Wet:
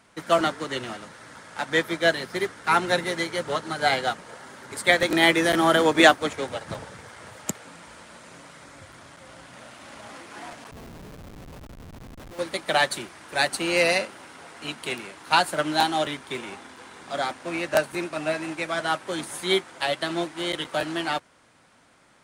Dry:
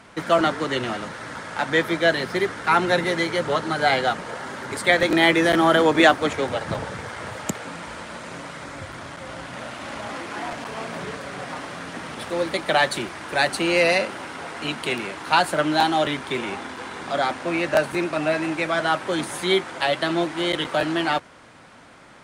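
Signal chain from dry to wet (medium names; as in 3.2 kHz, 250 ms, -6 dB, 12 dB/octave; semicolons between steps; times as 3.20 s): treble shelf 5.8 kHz +9.5 dB; 10.71–12.39 s: Schmitt trigger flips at -26.5 dBFS; upward expansion 1.5:1, over -33 dBFS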